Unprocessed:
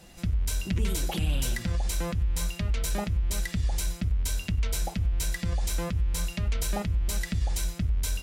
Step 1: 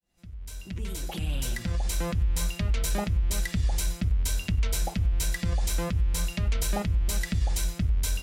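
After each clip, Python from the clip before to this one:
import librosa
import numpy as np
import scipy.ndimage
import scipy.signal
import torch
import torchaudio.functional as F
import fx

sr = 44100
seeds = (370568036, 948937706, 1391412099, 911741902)

y = fx.fade_in_head(x, sr, length_s=2.16)
y = F.gain(torch.from_numpy(y), 1.5).numpy()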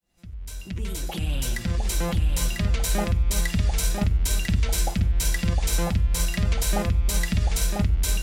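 y = x + 10.0 ** (-4.5 / 20.0) * np.pad(x, (int(996 * sr / 1000.0), 0))[:len(x)]
y = F.gain(torch.from_numpy(y), 3.5).numpy()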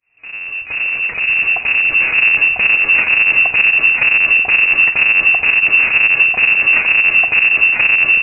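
y = fx.halfwave_hold(x, sr)
y = fx.freq_invert(y, sr, carrier_hz=2700)
y = F.gain(torch.from_numpy(y), 4.0).numpy()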